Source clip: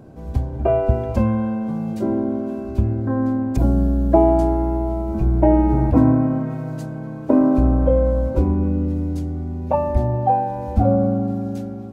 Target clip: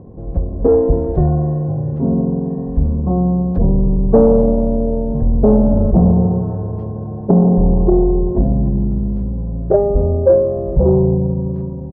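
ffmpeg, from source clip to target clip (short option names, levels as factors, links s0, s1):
-af "asetrate=30296,aresample=44100,atempo=1.45565,acontrast=86,lowpass=f=790:t=q:w=1.6,volume=0.794"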